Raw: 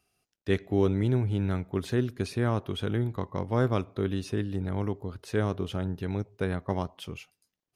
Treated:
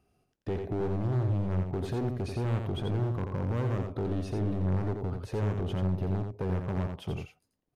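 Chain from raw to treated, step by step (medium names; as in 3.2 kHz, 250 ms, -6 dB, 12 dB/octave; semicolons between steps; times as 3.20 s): tilt shelf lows +8.5 dB, about 1.3 kHz; peak limiter -19 dBFS, peak gain reduction 13 dB; hard clipper -27.5 dBFS, distortion -9 dB; on a send: delay 86 ms -5.5 dB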